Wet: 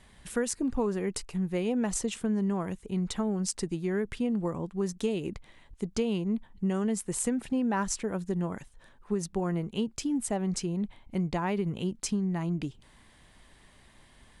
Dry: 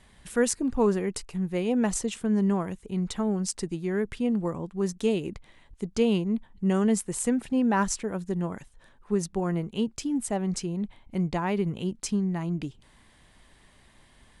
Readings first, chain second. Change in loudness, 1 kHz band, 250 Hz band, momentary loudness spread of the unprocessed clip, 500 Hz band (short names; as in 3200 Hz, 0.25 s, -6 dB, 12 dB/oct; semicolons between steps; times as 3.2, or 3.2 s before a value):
-3.0 dB, -3.5 dB, -3.0 dB, 8 LU, -4.0 dB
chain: compressor, threshold -25 dBFS, peak gain reduction 8 dB